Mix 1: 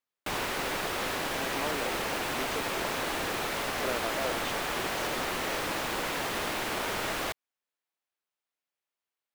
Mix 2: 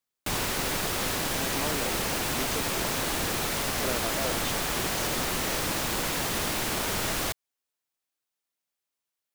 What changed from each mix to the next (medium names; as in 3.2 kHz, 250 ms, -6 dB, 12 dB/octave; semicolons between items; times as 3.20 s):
master: add tone controls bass +9 dB, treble +9 dB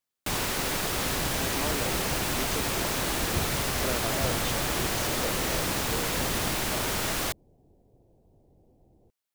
second sound: unmuted